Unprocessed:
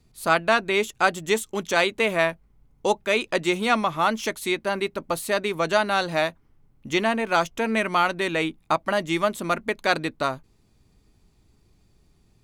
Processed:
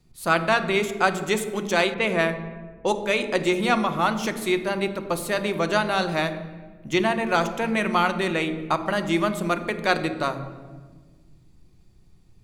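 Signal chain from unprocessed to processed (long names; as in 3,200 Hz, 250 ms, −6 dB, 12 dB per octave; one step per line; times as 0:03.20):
on a send at −10 dB: low-shelf EQ 410 Hz +11.5 dB + convolution reverb RT60 1.4 s, pre-delay 5 ms
0:01.94–0:02.88: on the sum: low-pass that shuts in the quiet parts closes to 1,900 Hz, open at −16 dBFS
level −1 dB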